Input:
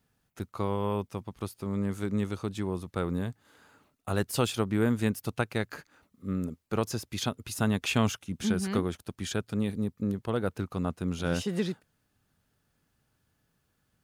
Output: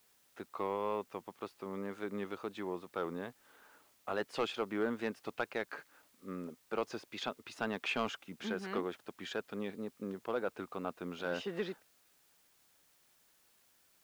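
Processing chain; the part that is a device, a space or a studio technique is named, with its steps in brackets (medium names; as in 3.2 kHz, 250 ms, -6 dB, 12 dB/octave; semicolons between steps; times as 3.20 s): tape answering machine (band-pass 390–2900 Hz; saturation -22 dBFS, distortion -15 dB; wow and flutter; white noise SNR 29 dB); trim -1.5 dB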